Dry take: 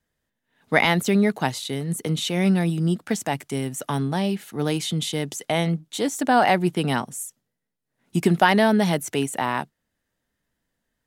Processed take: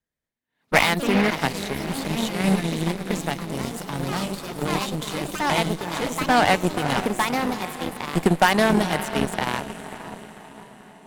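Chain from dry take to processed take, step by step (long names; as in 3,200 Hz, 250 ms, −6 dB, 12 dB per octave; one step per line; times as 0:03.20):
feedback delay with all-pass diffusion 516 ms, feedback 60%, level −7.5 dB
harmonic generator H 5 −29 dB, 7 −18 dB, 8 −22 dB, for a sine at −4.5 dBFS
delay with pitch and tempo change per echo 114 ms, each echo +3 semitones, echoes 3, each echo −6 dB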